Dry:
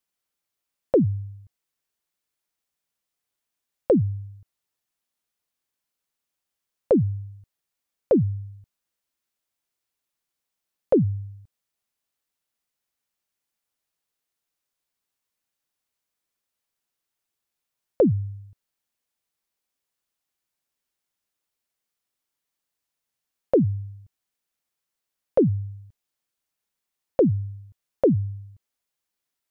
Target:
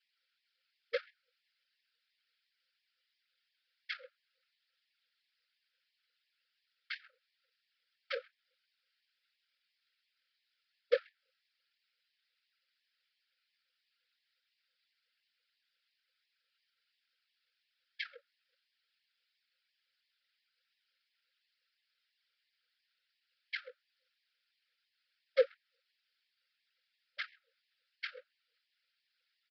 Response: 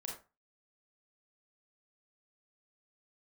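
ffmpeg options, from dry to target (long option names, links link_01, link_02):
-filter_complex "[0:a]bass=frequency=250:gain=-10,treble=frequency=4000:gain=-5,bandreject=frequency=50:width_type=h:width=6,bandreject=frequency=100:width_type=h:width=6,bandreject=frequency=150:width_type=h:width=6,bandreject=frequency=200:width_type=h:width=6,bandreject=frequency=250:width_type=h:width=6,bandreject=frequency=300:width_type=h:width=6,aecho=1:1:7.3:0.82,asplit=2[link_01][link_02];[link_02]acompressor=threshold=-30dB:ratio=6,volume=0.5dB[link_03];[link_01][link_03]amix=inputs=2:normalize=0,aeval=exprs='clip(val(0),-1,0.0398)':channel_layout=same,afftfilt=real='hypot(re,im)*cos(2*PI*random(0))':imag='hypot(re,im)*sin(2*PI*random(1))':win_size=512:overlap=0.75,crystalizer=i=2:c=0,asplit=2[link_04][link_05];[link_05]adelay=130,highpass=300,lowpass=3400,asoftclip=type=hard:threshold=-20.5dB,volume=-24dB[link_06];[link_04][link_06]amix=inputs=2:normalize=0,aresample=11025,aresample=44100,asuperstop=centerf=840:order=20:qfactor=1.1,afftfilt=real='re*gte(b*sr/1024,460*pow(1700/460,0.5+0.5*sin(2*PI*2.9*pts/sr)))':imag='im*gte(b*sr/1024,460*pow(1700/460,0.5+0.5*sin(2*PI*2.9*pts/sr)))':win_size=1024:overlap=0.75,volume=4.5dB"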